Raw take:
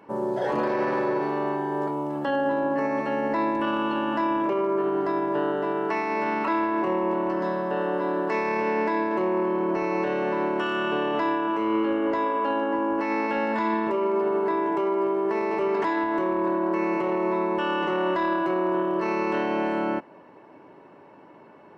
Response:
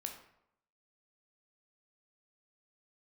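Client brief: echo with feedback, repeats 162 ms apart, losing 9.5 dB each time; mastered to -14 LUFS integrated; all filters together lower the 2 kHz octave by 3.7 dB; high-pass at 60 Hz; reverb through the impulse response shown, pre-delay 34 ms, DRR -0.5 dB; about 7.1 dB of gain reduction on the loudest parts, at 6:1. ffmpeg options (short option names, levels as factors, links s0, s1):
-filter_complex "[0:a]highpass=60,equalizer=f=2000:t=o:g=-5,acompressor=threshold=0.0355:ratio=6,aecho=1:1:162|324|486|648:0.335|0.111|0.0365|0.012,asplit=2[s0][s1];[1:a]atrim=start_sample=2205,adelay=34[s2];[s1][s2]afir=irnorm=-1:irlink=0,volume=1.33[s3];[s0][s3]amix=inputs=2:normalize=0,volume=5.96"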